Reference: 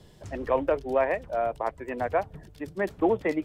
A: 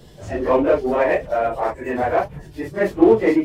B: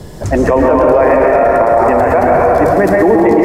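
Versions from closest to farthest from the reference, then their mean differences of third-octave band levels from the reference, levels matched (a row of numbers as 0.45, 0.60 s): A, B; 3.0, 7.5 dB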